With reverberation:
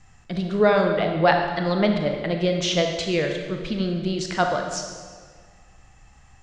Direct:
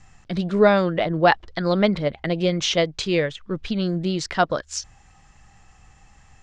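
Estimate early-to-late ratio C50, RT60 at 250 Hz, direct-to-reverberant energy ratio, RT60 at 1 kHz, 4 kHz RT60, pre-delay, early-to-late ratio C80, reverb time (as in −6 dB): 4.5 dB, 1.9 s, 3.0 dB, 1.6 s, 1.4 s, 29 ms, 6.0 dB, 1.7 s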